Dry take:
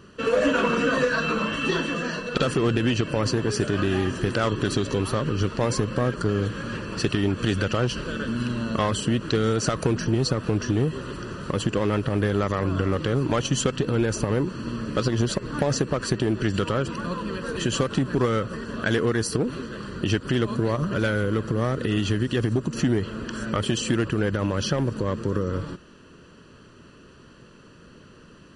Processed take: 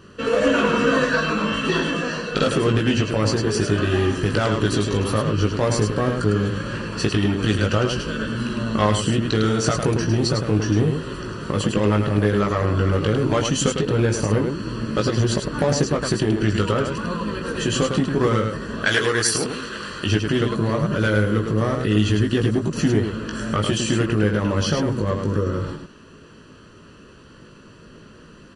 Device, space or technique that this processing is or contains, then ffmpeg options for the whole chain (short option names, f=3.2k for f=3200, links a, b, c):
slapback doubling: -filter_complex "[0:a]asettb=1/sr,asplit=3[a][b][c];[a]atrim=end=18.844[d];[b]atrim=start=18.84:end=20.06,asetpts=PTS-STARTPTS,afade=t=in:d=0.004:c=qsin,afade=t=out:st=1.216:d=0.004:c=qsin,tiltshelf=f=690:g=-7.5[e];[c]atrim=start=20.056[f];[d][e]acrossfade=d=0.004:c1=hsin:c2=qsin[g];[g][f]acrossfade=d=0.004:c1=qsin:c2=hsin,asplit=3[h][i][j];[i]adelay=19,volume=-4.5dB[k];[j]adelay=104,volume=-5dB[l];[h][k][l]amix=inputs=3:normalize=0,volume=1.5dB"